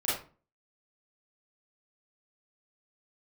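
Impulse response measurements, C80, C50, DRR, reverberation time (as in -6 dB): 9.0 dB, 2.0 dB, -10.0 dB, 0.35 s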